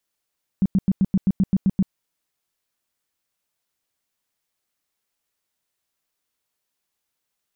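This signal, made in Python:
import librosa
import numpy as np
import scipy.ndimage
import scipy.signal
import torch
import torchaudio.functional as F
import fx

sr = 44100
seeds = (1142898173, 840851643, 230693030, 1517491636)

y = fx.tone_burst(sr, hz=192.0, cycles=7, every_s=0.13, bursts=10, level_db=-13.5)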